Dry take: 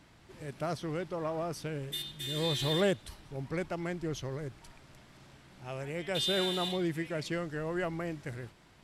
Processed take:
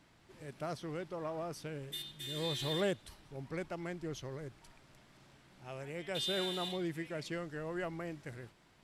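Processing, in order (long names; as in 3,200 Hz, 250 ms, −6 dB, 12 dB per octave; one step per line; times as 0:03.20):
parametric band 61 Hz −4 dB 2.1 octaves
level −5 dB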